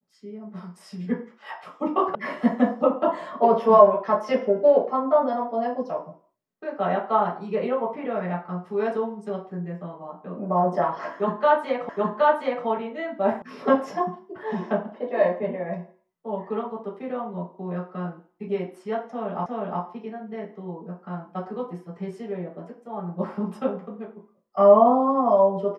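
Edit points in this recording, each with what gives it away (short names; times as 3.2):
2.15 sound cut off
11.89 repeat of the last 0.77 s
13.42 sound cut off
19.46 repeat of the last 0.36 s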